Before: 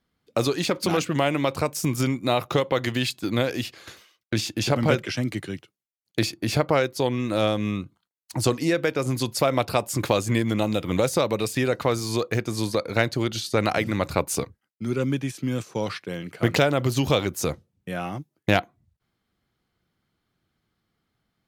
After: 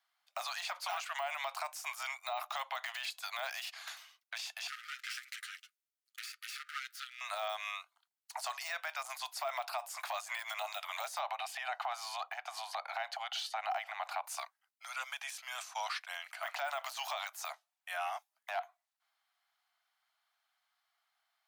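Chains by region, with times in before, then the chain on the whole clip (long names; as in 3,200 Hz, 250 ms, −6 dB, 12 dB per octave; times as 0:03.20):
0:04.67–0:07.21: lower of the sound and its delayed copy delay 8.1 ms + downward compressor 10 to 1, threshold −29 dBFS + linear-phase brick-wall high-pass 1,200 Hz
0:11.19–0:14.24: bass and treble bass +11 dB, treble −12 dB + downward compressor 5 to 1, threshold −19 dBFS + hollow resonant body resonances 780/3,000 Hz, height 10 dB, ringing for 25 ms
whole clip: de-essing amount 90%; Butterworth high-pass 660 Hz 96 dB per octave; brickwall limiter −27 dBFS; level −1 dB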